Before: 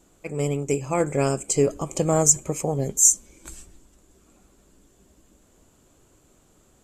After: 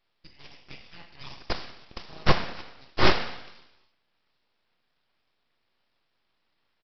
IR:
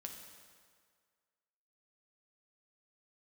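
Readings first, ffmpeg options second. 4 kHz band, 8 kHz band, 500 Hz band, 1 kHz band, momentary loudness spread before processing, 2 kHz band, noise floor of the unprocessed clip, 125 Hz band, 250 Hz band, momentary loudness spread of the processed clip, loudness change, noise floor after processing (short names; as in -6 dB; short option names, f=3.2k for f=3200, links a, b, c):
+8.0 dB, -35.0 dB, -10.5 dB, -0.5 dB, 10 LU, +7.0 dB, -60 dBFS, -8.5 dB, -8.0 dB, 22 LU, -6.5 dB, -75 dBFS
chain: -filter_complex "[0:a]aexciter=amount=9:drive=6.9:freq=2.1k,aemphasis=mode=production:type=bsi,aeval=exprs='22.4*(cos(1*acos(clip(val(0)/22.4,-1,1)))-cos(1*PI/2))+3.16*(cos(4*acos(clip(val(0)/22.4,-1,1)))-cos(4*PI/2))+1.78*(cos(7*acos(clip(val(0)/22.4,-1,1)))-cos(7*PI/2))':c=same[a];[1:a]atrim=start_sample=2205,asetrate=83790,aresample=44100[b];[a][b]afir=irnorm=-1:irlink=0,aresample=11025,aeval=exprs='abs(val(0))':c=same,aresample=44100,volume=-8.5dB"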